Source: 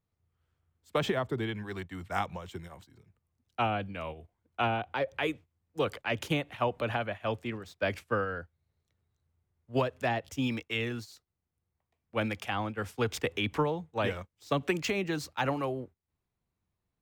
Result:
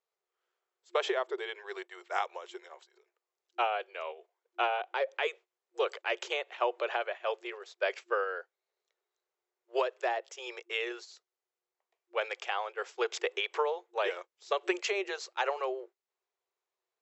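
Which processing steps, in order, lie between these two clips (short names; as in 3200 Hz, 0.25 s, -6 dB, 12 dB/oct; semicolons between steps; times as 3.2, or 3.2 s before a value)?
9.91–10.74 dynamic EQ 3000 Hz, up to -5 dB, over -46 dBFS, Q 0.96; FFT band-pass 350–7800 Hz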